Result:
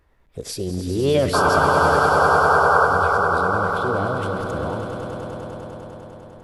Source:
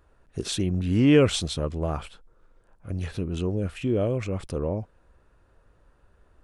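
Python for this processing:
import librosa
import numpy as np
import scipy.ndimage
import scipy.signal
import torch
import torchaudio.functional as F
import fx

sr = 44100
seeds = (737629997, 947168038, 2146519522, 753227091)

y = fx.formant_shift(x, sr, semitones=5)
y = fx.spec_paint(y, sr, seeds[0], shape='noise', start_s=1.33, length_s=1.53, low_hz=390.0, high_hz=1600.0, level_db=-17.0)
y = fx.echo_swell(y, sr, ms=100, loudest=5, wet_db=-10.0)
y = F.gain(torch.from_numpy(y), -1.0).numpy()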